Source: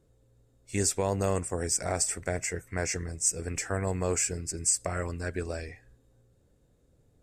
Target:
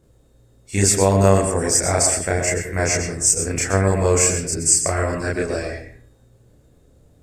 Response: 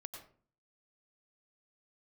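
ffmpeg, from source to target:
-filter_complex "[0:a]asplit=2[link_01][link_02];[1:a]atrim=start_sample=2205,adelay=31[link_03];[link_02][link_03]afir=irnorm=-1:irlink=0,volume=7dB[link_04];[link_01][link_04]amix=inputs=2:normalize=0,volume=7dB"

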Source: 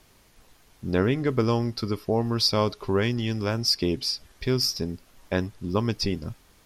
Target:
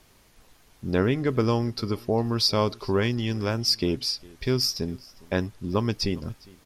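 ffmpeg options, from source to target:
ffmpeg -i in.wav -af "aecho=1:1:406:0.0631" out.wav

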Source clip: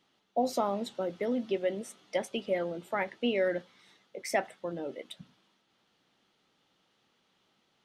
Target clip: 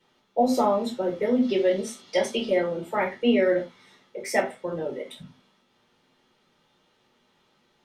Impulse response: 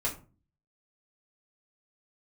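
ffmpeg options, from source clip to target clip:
-filter_complex "[0:a]asettb=1/sr,asplit=3[link_01][link_02][link_03];[link_01]atrim=end=1.424[link_04];[link_02]atrim=start=1.42:end=2.54,asetpts=PTS-STARTPTS,afade=type=in:duration=0.004:curve=qsin,afade=type=out:start_time=1.116:duration=0.004:curve=qsin,equalizer=frequency=4500:width=1.1:gain=10.5[link_05];[link_03]atrim=start=2.536[link_06];[link_04][link_05]acrossfade=duration=0.004:curve1=hsin:curve2=qsin[link_07];[link_07][link_06]acrossfade=duration=0.004:curve1=qsin:curve2=hsin[link_08];[1:a]atrim=start_sample=2205,atrim=end_sample=4410,asetrate=39249,aresample=44100[link_09];[link_08][link_09]afir=irnorm=-1:irlink=0"

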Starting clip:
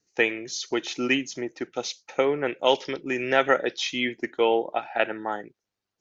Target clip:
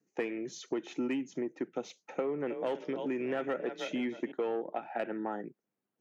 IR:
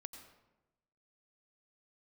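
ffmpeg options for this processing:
-filter_complex "[0:a]equalizer=frequency=210:width=0.53:gain=9.5,asettb=1/sr,asplit=3[link_01][link_02][link_03];[link_01]atrim=end=1.984[link_04];[link_02]atrim=start=1.98:end=4.32,asetpts=PTS-STARTPTS,afade=type=in:duration=0.004:curve=qsin,afade=type=out:start_time=2.336:duration=0.004:curve=qsin,asplit=4[link_05][link_06][link_07][link_08];[link_06]adelay=315,afreqshift=33,volume=-14.5dB[link_09];[link_07]adelay=630,afreqshift=66,volume=-24.4dB[link_10];[link_08]adelay=945,afreqshift=99,volume=-34.3dB[link_11];[link_05][link_09][link_10][link_11]amix=inputs=4:normalize=0,atrim=end_sample=103194[link_12];[link_03]atrim=start=4.316[link_13];[link_04][link_12]acrossfade=duration=0.004:curve1=hsin:curve2=qsin[link_14];[link_14][link_13]acrossfade=duration=0.004:curve1=qsin:curve2=hsin,asoftclip=type=tanh:threshold=-12dB,highpass=frequency=140:width=0.5412,highpass=frequency=140:width=1.3066,equalizer=frequency=4800:width=1.1:gain=-14,acompressor=threshold=-29dB:ratio=3,volume=-4dB"

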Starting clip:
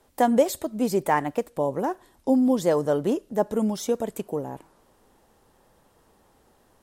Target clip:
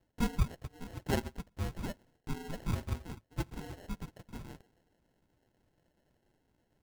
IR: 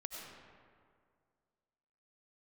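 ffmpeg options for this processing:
-af "lowshelf=frequency=450:width_type=q:width=3:gain=-8,aeval=exprs='val(0)*sin(2*PI*1700*n/s)':channel_layout=same,flanger=delay=2.9:depth=5.8:regen=38:speed=1.2:shape=sinusoidal,tiltshelf=frequency=650:gain=6.5,acrusher=samples=37:mix=1:aa=0.000001,volume=-3dB"

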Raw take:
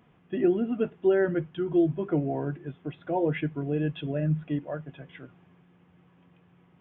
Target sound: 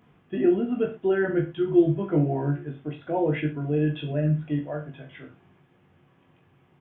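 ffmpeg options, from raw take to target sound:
ffmpeg -i in.wav -filter_complex "[0:a]asettb=1/sr,asplit=3[link_01][link_02][link_03];[link_01]atrim=end=1.354[link_04];[link_02]atrim=start=1.35:end=2.65,asetpts=PTS-STARTPTS,afade=type=in:duration=0.004:curve=qsin,afade=type=out:start_time=1.296:duration=0.004:curve=qsin,asplit=2[link_05][link_06];[link_06]adelay=14,volume=-6dB[link_07];[link_05][link_07]amix=inputs=2:normalize=0,atrim=end_sample=57330[link_08];[link_03]atrim=start=2.646[link_09];[link_04][link_08]acrossfade=duration=0.004:curve1=hsin:curve2=qsin[link_10];[link_10][link_09]acrossfade=duration=0.004:curve1=qsin:curve2=hsin,aecho=1:1:20|42|66.2|92.82|122.1:0.631|0.398|0.251|0.158|0.1" out.wav

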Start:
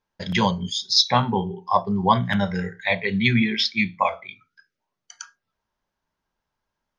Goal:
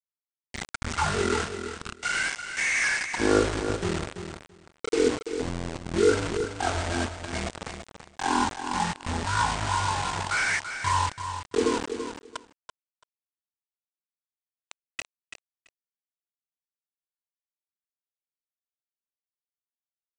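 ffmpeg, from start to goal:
ffmpeg -i in.wav -filter_complex "[0:a]acrossover=split=5100[link_01][link_02];[link_02]acompressor=threshold=-43dB:ratio=4:attack=1:release=60[link_03];[link_01][link_03]amix=inputs=2:normalize=0,agate=range=-38dB:threshold=-50dB:ratio=16:detection=peak,aemphasis=mode=production:type=75fm,acrossover=split=160|550|1800[link_04][link_05][link_06][link_07];[link_04]acompressor=threshold=-42dB:ratio=5[link_08];[link_05]alimiter=level_in=0.5dB:limit=-24dB:level=0:latency=1:release=231,volume=-0.5dB[link_09];[link_07]asoftclip=type=hard:threshold=-18dB[link_10];[link_08][link_09][link_06][link_10]amix=inputs=4:normalize=0,atempo=0.81,flanger=delay=3.2:depth=6:regen=86:speed=0.41:shape=triangular,acrusher=bits=4:mix=0:aa=0.000001,aecho=1:1:143|286:0.355|0.0532,asetrate=18846,aresample=44100" out.wav

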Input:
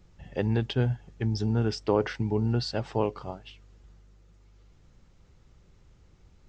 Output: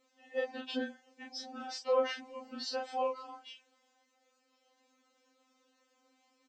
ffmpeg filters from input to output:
ffmpeg -i in.wav -filter_complex "[0:a]highpass=330,asplit=2[link_01][link_02];[link_02]adelay=30,volume=-2dB[link_03];[link_01][link_03]amix=inputs=2:normalize=0,afftfilt=real='re*3.46*eq(mod(b,12),0)':imag='im*3.46*eq(mod(b,12),0)':win_size=2048:overlap=0.75,volume=-2dB" out.wav

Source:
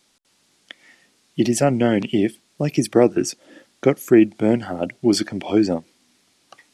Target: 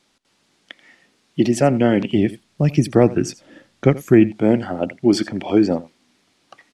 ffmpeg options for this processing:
ffmpeg -i in.wav -filter_complex "[0:a]highshelf=frequency=5800:gain=-11,aecho=1:1:84:0.119,asplit=3[link_01][link_02][link_03];[link_01]afade=type=out:start_time=2.15:duration=0.02[link_04];[link_02]asubboost=boost=4:cutoff=170,afade=type=in:start_time=2.15:duration=0.02,afade=type=out:start_time=4.31:duration=0.02[link_05];[link_03]afade=type=in:start_time=4.31:duration=0.02[link_06];[link_04][link_05][link_06]amix=inputs=3:normalize=0,volume=2dB" out.wav

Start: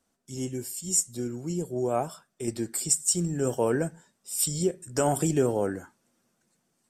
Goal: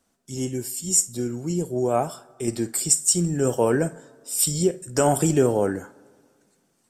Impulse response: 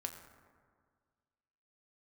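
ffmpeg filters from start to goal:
-filter_complex "[0:a]asplit=2[link_01][link_02];[1:a]atrim=start_sample=2205,lowshelf=frequency=200:gain=-12,adelay=52[link_03];[link_02][link_03]afir=irnorm=-1:irlink=0,volume=-14dB[link_04];[link_01][link_04]amix=inputs=2:normalize=0,volume=5dB"

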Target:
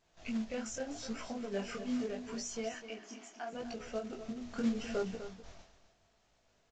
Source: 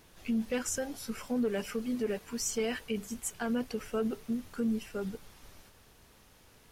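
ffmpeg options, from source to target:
ffmpeg -i in.wav -filter_complex "[0:a]agate=range=-33dB:threshold=-47dB:ratio=3:detection=peak,equalizer=frequency=670:width_type=o:width=0.21:gain=13.5,bandreject=frequency=60:width_type=h:width=6,bandreject=frequency=120:width_type=h:width=6,bandreject=frequency=180:width_type=h:width=6,bandreject=frequency=240:width_type=h:width=6,bandreject=frequency=300:width_type=h:width=6,bandreject=frequency=360:width_type=h:width=6,bandreject=frequency=420:width_type=h:width=6,bandreject=frequency=480:width_type=h:width=6,acompressor=threshold=-39dB:ratio=2,alimiter=level_in=9.5dB:limit=-24dB:level=0:latency=1:release=358,volume=-9.5dB,asettb=1/sr,asplit=3[link_01][link_02][link_03];[link_01]atrim=end=4.584[link_04];[link_02]atrim=start=4.58:end=5.03,asetpts=PTS-STARTPTS,afade=type=in:duration=0.004:curve=qsin,afade=type=out:start_time=0.446:duration=0.004:curve=qsin,acontrast=27[link_05];[link_03]atrim=start=5.026[link_06];[link_04][link_05]acrossfade=duration=0.004:curve1=hsin:curve2=qsin[link_07];[link_07][link_06]acrossfade=duration=0.004:curve1=qsin:curve2=hsin,flanger=delay=17:depth=7.1:speed=0.79,acrusher=bits=4:mode=log:mix=0:aa=0.000001,asettb=1/sr,asplit=3[link_08][link_09][link_10];[link_08]atrim=end=1.504[link_11];[link_09]atrim=start=1.5:end=2.04,asetpts=PTS-STARTPTS,afade=type=in:duration=0.004:curve=qsin,afade=type=out:start_time=0.536:duration=0.004:curve=qsin,asplit=2[link_12][link_13];[link_13]adelay=25,volume=-3.5dB[link_14];[link_12][link_14]amix=inputs=2:normalize=0,atrim=end_sample=23814[link_15];[link_10]atrim=start=2.036[link_16];[link_11][link_15]acrossfade=duration=0.004:curve1=hsin:curve2=qsin[link_17];[link_17][link_16]acrossfade=duration=0.004:curve1=qsin:curve2=hsin,asettb=1/sr,asplit=3[link_18][link_19][link_20];[link_18]atrim=end=2.744[link_21];[link_19]atrim=start=2.74:end=3.53,asetpts=PTS-STARTPTS,afade=type=in:duration=0.004:curve=qsin,afade=type=out:start_time=0.786:duration=0.004:curve=qsin,highpass=frequency=270:width=0.5412,highpass=frequency=270:width=1.3066,equalizer=frequency=310:width_type=q:width=4:gain=6,equalizer=frequency=460:width_type=q:width=4:gain=-8,equalizer=frequency=3900:width_type=q:width=4:gain=-7,lowpass=frequency=6000:width=0.5412,lowpass=frequency=6000:width=1.3066[link_22];[link_20]atrim=start=3.526[link_23];[link_21][link_22]acrossfade=duration=0.004:curve1=hsin:curve2=qsin[link_24];[link_24][link_23]acrossfade=duration=0.004:curve1=qsin:curve2=hsin,aecho=1:1:251:0.266,volume=5.5dB" -ar 16000 -c:a pcm_mulaw out.wav

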